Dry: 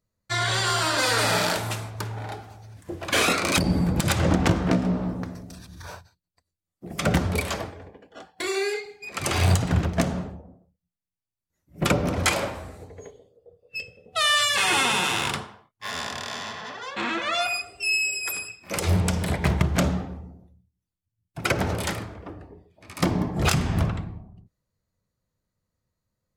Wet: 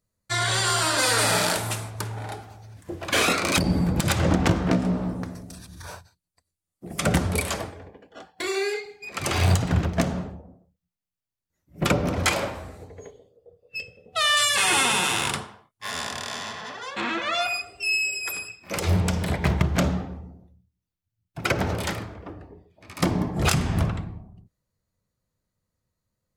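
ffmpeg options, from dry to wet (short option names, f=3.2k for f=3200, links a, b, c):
-af "asetnsamples=n=441:p=0,asendcmd='2.44 equalizer g 0;4.8 equalizer g 7.5;7.8 equalizer g -2;14.37 equalizer g 6.5;17 equalizer g -4;23.02 equalizer g 2.5',equalizer=f=9.6k:t=o:w=0.78:g=7.5"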